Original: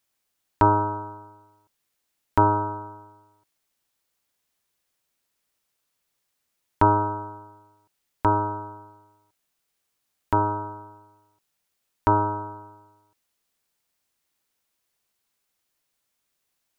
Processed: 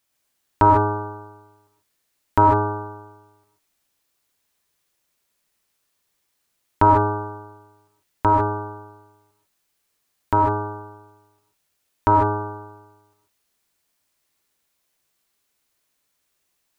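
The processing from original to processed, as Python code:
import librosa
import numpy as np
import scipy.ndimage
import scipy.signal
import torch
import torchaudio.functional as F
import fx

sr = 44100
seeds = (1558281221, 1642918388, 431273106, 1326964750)

y = fx.rev_gated(x, sr, seeds[0], gate_ms=170, shape='rising', drr_db=1.0)
y = F.gain(torch.from_numpy(y), 2.0).numpy()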